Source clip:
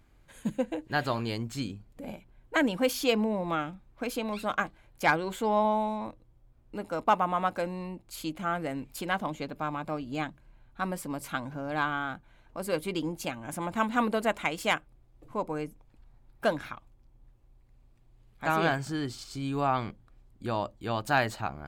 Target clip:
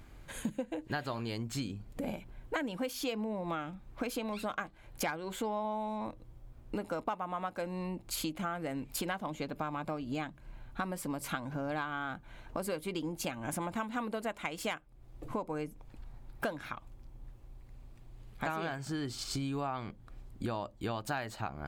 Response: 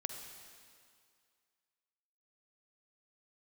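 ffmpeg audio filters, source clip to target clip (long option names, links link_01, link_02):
-af "acompressor=threshold=-42dB:ratio=8,volume=8.5dB"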